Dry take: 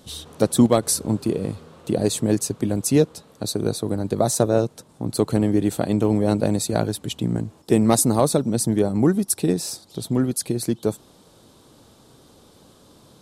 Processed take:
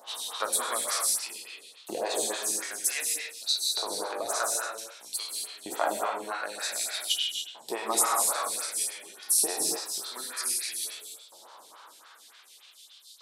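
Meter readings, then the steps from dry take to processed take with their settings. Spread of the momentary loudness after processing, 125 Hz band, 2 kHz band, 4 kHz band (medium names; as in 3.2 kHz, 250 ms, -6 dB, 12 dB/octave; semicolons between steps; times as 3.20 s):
11 LU, under -40 dB, +2.5 dB, +2.5 dB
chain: spectral sustain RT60 0.49 s; compression 1.5:1, threshold -27 dBFS, peak gain reduction 6.5 dB; LFO high-pass saw up 0.53 Hz 790–4500 Hz; gated-style reverb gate 310 ms flat, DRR -0.5 dB; lamp-driven phase shifter 3.5 Hz; trim +1.5 dB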